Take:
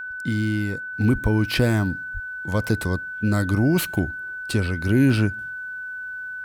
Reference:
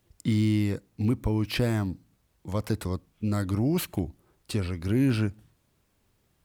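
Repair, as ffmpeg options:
-filter_complex "[0:a]bandreject=f=1.5k:w=30,asplit=3[a][b][c];[a]afade=t=out:st=1.12:d=0.02[d];[b]highpass=f=140:w=0.5412,highpass=f=140:w=1.3066,afade=t=in:st=1.12:d=0.02,afade=t=out:st=1.24:d=0.02[e];[c]afade=t=in:st=1.24:d=0.02[f];[d][e][f]amix=inputs=3:normalize=0,asplit=3[g][h][i];[g]afade=t=out:st=2.13:d=0.02[j];[h]highpass=f=140:w=0.5412,highpass=f=140:w=1.3066,afade=t=in:st=2.13:d=0.02,afade=t=out:st=2.25:d=0.02[k];[i]afade=t=in:st=2.25:d=0.02[l];[j][k][l]amix=inputs=3:normalize=0,asetnsamples=n=441:p=0,asendcmd='0.93 volume volume -6dB',volume=0dB"

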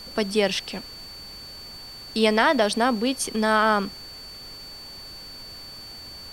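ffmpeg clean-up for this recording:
-af "adeclick=t=4,bandreject=f=4.5k:w=30,afftdn=nr=28:nf=-41"

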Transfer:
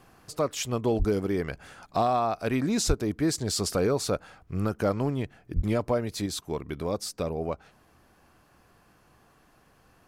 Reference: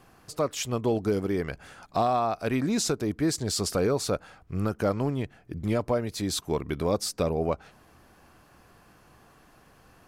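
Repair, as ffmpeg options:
-filter_complex "[0:a]asplit=3[a][b][c];[a]afade=t=out:st=0.98:d=0.02[d];[b]highpass=f=140:w=0.5412,highpass=f=140:w=1.3066,afade=t=in:st=0.98:d=0.02,afade=t=out:st=1.1:d=0.02[e];[c]afade=t=in:st=1.1:d=0.02[f];[d][e][f]amix=inputs=3:normalize=0,asplit=3[g][h][i];[g]afade=t=out:st=2.87:d=0.02[j];[h]highpass=f=140:w=0.5412,highpass=f=140:w=1.3066,afade=t=in:st=2.87:d=0.02,afade=t=out:st=2.99:d=0.02[k];[i]afade=t=in:st=2.99:d=0.02[l];[j][k][l]amix=inputs=3:normalize=0,asplit=3[m][n][o];[m]afade=t=out:st=5.55:d=0.02[p];[n]highpass=f=140:w=0.5412,highpass=f=140:w=1.3066,afade=t=in:st=5.55:d=0.02,afade=t=out:st=5.67:d=0.02[q];[o]afade=t=in:st=5.67:d=0.02[r];[p][q][r]amix=inputs=3:normalize=0,asetnsamples=n=441:p=0,asendcmd='6.26 volume volume 4dB',volume=0dB"

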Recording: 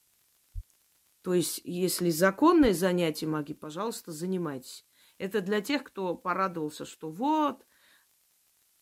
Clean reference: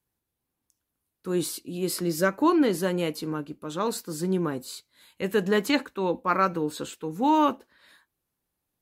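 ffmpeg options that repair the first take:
-filter_complex "[0:a]adeclick=t=4,asplit=3[a][b][c];[a]afade=t=out:st=0.54:d=0.02[d];[b]highpass=f=140:w=0.5412,highpass=f=140:w=1.3066,afade=t=in:st=0.54:d=0.02,afade=t=out:st=0.66:d=0.02[e];[c]afade=t=in:st=0.66:d=0.02[f];[d][e][f]amix=inputs=3:normalize=0,asplit=3[g][h][i];[g]afade=t=out:st=2.61:d=0.02[j];[h]highpass=f=140:w=0.5412,highpass=f=140:w=1.3066,afade=t=in:st=2.61:d=0.02,afade=t=out:st=2.73:d=0.02[k];[i]afade=t=in:st=2.73:d=0.02[l];[j][k][l]amix=inputs=3:normalize=0,agate=range=-21dB:threshold=-61dB,asetnsamples=n=441:p=0,asendcmd='3.64 volume volume 5.5dB',volume=0dB"

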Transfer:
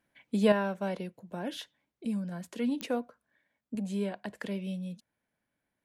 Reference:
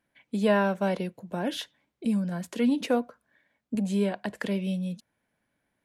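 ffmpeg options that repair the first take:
-af "adeclick=t=4,asetnsamples=n=441:p=0,asendcmd='0.52 volume volume 6.5dB',volume=0dB"

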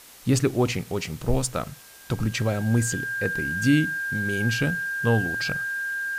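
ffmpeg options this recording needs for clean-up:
-af "adeclick=t=4,bandreject=f=1.6k:w=30,afwtdn=0.0045"

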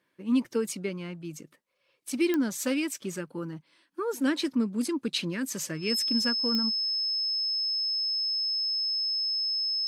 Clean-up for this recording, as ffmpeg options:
-af "adeclick=t=4,bandreject=f=5.2k:w=30"

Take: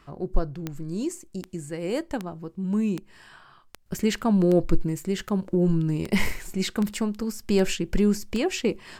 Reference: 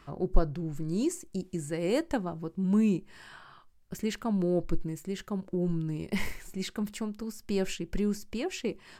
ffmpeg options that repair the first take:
-af "adeclick=t=4,asetnsamples=n=441:p=0,asendcmd='3.86 volume volume -8dB',volume=0dB"

